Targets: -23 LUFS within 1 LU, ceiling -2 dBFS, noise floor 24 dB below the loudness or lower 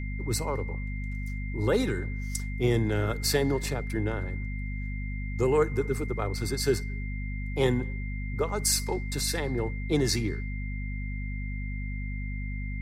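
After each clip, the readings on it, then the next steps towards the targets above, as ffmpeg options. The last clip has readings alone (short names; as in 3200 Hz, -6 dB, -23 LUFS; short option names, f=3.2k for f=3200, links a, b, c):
hum 50 Hz; harmonics up to 250 Hz; hum level -31 dBFS; steady tone 2100 Hz; tone level -42 dBFS; loudness -30.0 LUFS; peak -11.5 dBFS; loudness target -23.0 LUFS
-> -af "bandreject=f=50:t=h:w=6,bandreject=f=100:t=h:w=6,bandreject=f=150:t=h:w=6,bandreject=f=200:t=h:w=6,bandreject=f=250:t=h:w=6"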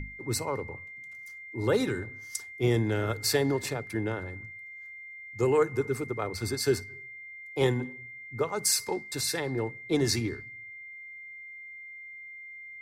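hum none; steady tone 2100 Hz; tone level -42 dBFS
-> -af "bandreject=f=2.1k:w=30"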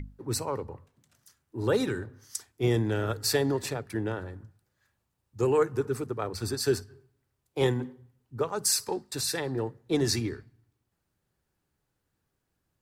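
steady tone none; loudness -29.5 LUFS; peak -12.5 dBFS; loudness target -23.0 LUFS
-> -af "volume=6.5dB"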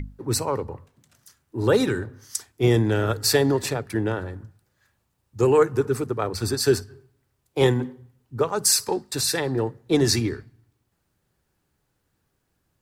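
loudness -23.0 LUFS; peak -6.0 dBFS; noise floor -74 dBFS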